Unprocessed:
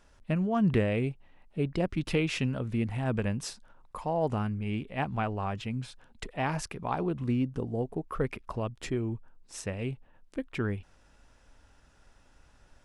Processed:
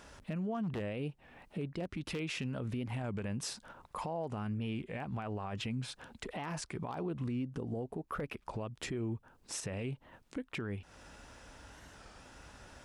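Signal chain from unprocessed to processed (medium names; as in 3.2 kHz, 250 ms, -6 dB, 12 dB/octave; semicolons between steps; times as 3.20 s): wavefolder -19 dBFS; high-pass 40 Hz; compression 6:1, threshold -42 dBFS, peak gain reduction 18 dB; bass shelf 82 Hz -6 dB; peak limiter -40 dBFS, peak gain reduction 11.5 dB; warped record 33 1/3 rpm, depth 160 cents; trim +10 dB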